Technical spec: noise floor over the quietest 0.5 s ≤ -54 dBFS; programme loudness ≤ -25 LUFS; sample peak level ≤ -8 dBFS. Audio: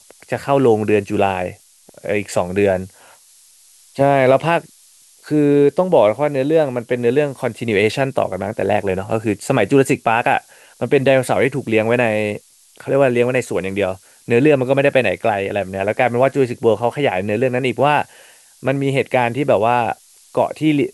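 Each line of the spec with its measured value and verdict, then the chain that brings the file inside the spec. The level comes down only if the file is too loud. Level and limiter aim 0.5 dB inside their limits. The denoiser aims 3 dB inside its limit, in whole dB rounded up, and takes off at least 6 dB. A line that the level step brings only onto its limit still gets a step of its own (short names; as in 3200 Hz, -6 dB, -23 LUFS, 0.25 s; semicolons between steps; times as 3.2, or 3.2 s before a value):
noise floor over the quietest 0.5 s -49 dBFS: fail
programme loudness -17.0 LUFS: fail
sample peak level -2.0 dBFS: fail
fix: gain -8.5 dB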